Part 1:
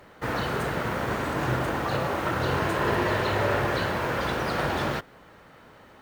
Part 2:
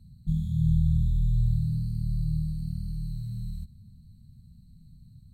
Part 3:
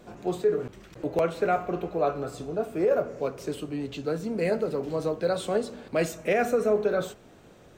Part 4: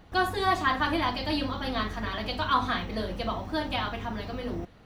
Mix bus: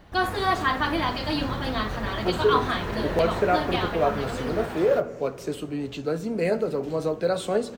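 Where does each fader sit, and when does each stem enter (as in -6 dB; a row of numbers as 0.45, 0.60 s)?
-8.5, -15.5, +2.0, +1.5 dB; 0.00, 0.70, 2.00, 0.00 s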